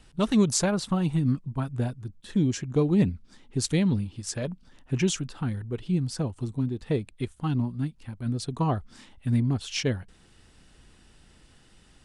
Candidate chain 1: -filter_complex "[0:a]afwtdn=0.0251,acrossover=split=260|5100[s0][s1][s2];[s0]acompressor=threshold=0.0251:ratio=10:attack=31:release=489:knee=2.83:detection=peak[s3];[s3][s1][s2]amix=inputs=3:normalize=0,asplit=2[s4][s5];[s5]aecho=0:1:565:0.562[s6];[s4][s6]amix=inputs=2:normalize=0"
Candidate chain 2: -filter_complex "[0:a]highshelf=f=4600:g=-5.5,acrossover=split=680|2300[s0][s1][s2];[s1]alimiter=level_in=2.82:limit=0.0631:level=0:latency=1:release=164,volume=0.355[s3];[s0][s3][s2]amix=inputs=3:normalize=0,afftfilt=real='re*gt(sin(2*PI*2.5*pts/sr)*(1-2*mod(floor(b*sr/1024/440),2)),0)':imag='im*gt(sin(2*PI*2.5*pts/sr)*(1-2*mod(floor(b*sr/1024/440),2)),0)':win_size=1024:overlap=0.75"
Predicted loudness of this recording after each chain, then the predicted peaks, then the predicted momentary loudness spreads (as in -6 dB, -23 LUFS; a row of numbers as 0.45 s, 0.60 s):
-31.0 LUFS, -31.5 LUFS; -11.5 dBFS, -11.5 dBFS; 8 LU, 16 LU